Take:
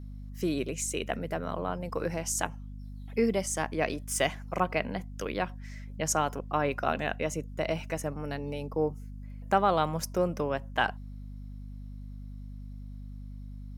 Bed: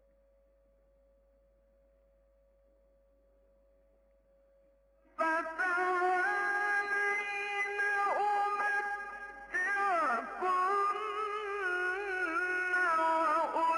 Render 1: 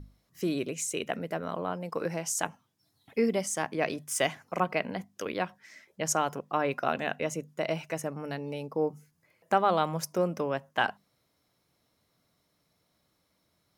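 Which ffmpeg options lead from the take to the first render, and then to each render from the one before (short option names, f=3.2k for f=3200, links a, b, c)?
-af "bandreject=f=50:t=h:w=6,bandreject=f=100:t=h:w=6,bandreject=f=150:t=h:w=6,bandreject=f=200:t=h:w=6,bandreject=f=250:t=h:w=6"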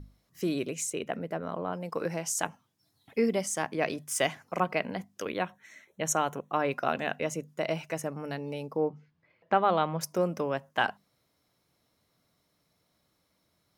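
-filter_complex "[0:a]asettb=1/sr,asplit=3[a][b][c];[a]atrim=end=0.904[d];[b]atrim=start=0.9:end=1.73,asetpts=PTS-STARTPTS,afade=t=in:d=0.004:c=qsin,afade=t=out:st=0.826:d=0.004:c=qsin,highshelf=f=2.2k:g=-8[e];[c]atrim=start=1.726[f];[d][e]acrossfade=d=0.004:c1=hsin:c2=qsin[g];[g][f]acrossfade=d=0.004:c1=qsin:c2=hsin,asettb=1/sr,asplit=3[h][i][j];[h]atrim=end=5.294[k];[i]atrim=start=5.29:end=6.56,asetpts=PTS-STARTPTS,afade=t=in:d=0.004:c=qsin,afade=t=out:st=1.266:d=0.004:c=qsin,asuperstop=centerf=4900:order=8:qfactor=4[l];[j]atrim=start=6.556[m];[k][l]acrossfade=d=0.004:c1=hsin:c2=qsin[n];[n][m]acrossfade=d=0.004:c1=qsin:c2=hsin,asettb=1/sr,asplit=3[o][p][q];[o]atrim=end=8.774[r];[p]atrim=start=8.77:end=10.01,asetpts=PTS-STARTPTS,afade=t=in:d=0.004:c=qsin,afade=t=out:st=1.236:d=0.004:c=qsin,lowpass=f=3.9k:w=0.5412,lowpass=f=3.9k:w=1.3066[s];[q]atrim=start=10.006[t];[r][s]acrossfade=d=0.004:c1=hsin:c2=qsin[u];[u][t]acrossfade=d=0.004:c1=qsin:c2=hsin"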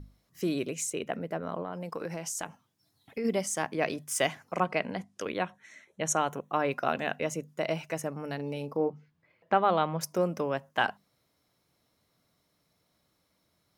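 -filter_complex "[0:a]asplit=3[a][b][c];[a]afade=t=out:st=1.62:d=0.02[d];[b]acompressor=threshold=-32dB:ratio=3:attack=3.2:release=140:knee=1:detection=peak,afade=t=in:st=1.62:d=0.02,afade=t=out:st=3.24:d=0.02[e];[c]afade=t=in:st=3.24:d=0.02[f];[d][e][f]amix=inputs=3:normalize=0,asettb=1/sr,asplit=3[g][h][i];[g]atrim=end=4.534[j];[h]atrim=start=4.53:end=6.3,asetpts=PTS-STARTPTS,afade=t=in:d=0.004:c=qsin,afade=t=out:st=1.766:d=0.004:c=qsin,lowpass=f=11k:w=0.5412,lowpass=f=11k:w=1.3066[k];[i]atrim=start=6.296[l];[j][k]acrossfade=d=0.004:c1=hsin:c2=qsin[m];[m][l]acrossfade=d=0.004:c1=qsin:c2=hsin,asettb=1/sr,asplit=3[n][o][p];[n]atrim=end=8.354[q];[o]atrim=start=8.35:end=8.9,asetpts=PTS-STARTPTS,afade=t=in:d=0.004:c=qsin,afade=t=out:st=0.546:d=0.004:c=qsin,asplit=2[r][s];[s]adelay=42,volume=-11dB[t];[r][t]amix=inputs=2:normalize=0,atrim=end_sample=24255[u];[p]atrim=start=8.896[v];[q][u]acrossfade=d=0.004:c1=hsin:c2=qsin[w];[w][v]acrossfade=d=0.004:c1=qsin:c2=hsin"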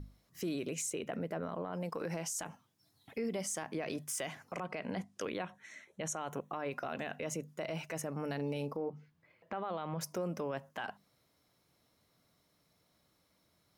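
-af "acompressor=threshold=-29dB:ratio=4,alimiter=level_in=4.5dB:limit=-24dB:level=0:latency=1:release=17,volume=-4.5dB"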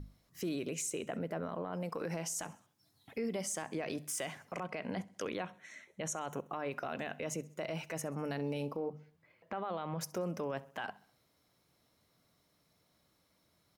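-af "aecho=1:1:66|132|198|264:0.075|0.0397|0.0211|0.0112"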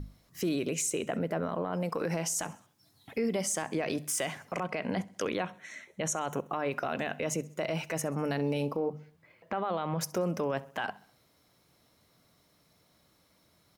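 -af "volume=6.5dB"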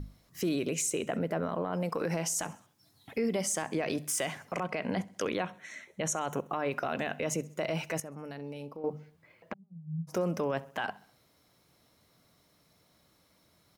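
-filter_complex "[0:a]asplit=3[a][b][c];[a]afade=t=out:st=9.52:d=0.02[d];[b]asuperpass=centerf=160:order=4:qfactor=6,afade=t=in:st=9.52:d=0.02,afade=t=out:st=10.07:d=0.02[e];[c]afade=t=in:st=10.07:d=0.02[f];[d][e][f]amix=inputs=3:normalize=0,asplit=3[g][h][i];[g]atrim=end=8.002[j];[h]atrim=start=7.998:end=8.842,asetpts=PTS-STARTPTS,volume=-11dB[k];[i]atrim=start=8.838[l];[j][k]acrossfade=d=0.004:c1=hsin:c2=hsin[m];[m][l]acrossfade=d=0.004:c1=hsin:c2=hsin"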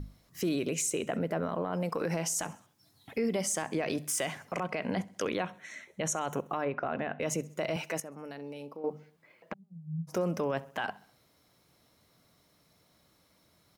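-filter_complex "[0:a]asplit=3[a][b][c];[a]afade=t=out:st=6.64:d=0.02[d];[b]lowpass=1.9k,afade=t=in:st=6.64:d=0.02,afade=t=out:st=7.19:d=0.02[e];[c]afade=t=in:st=7.19:d=0.02[f];[d][e][f]amix=inputs=3:normalize=0,asettb=1/sr,asplit=3[g][h][i];[g]atrim=end=7.764[j];[h]atrim=start=7.76:end=9.52,asetpts=PTS-STARTPTS,afade=t=in:d=0.004:c=qsin,afade=t=out:st=1.756:d=0.004:c=qsin,highpass=190[k];[i]atrim=start=9.516[l];[j][k]acrossfade=d=0.004:c1=hsin:c2=qsin[m];[m][l]acrossfade=d=0.004:c1=qsin:c2=hsin"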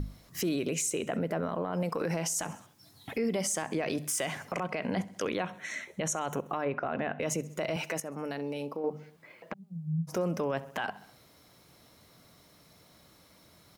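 -filter_complex "[0:a]asplit=2[a][b];[b]acompressor=threshold=-39dB:ratio=6,volume=3dB[c];[a][c]amix=inputs=2:normalize=0,alimiter=limit=-22dB:level=0:latency=1:release=79"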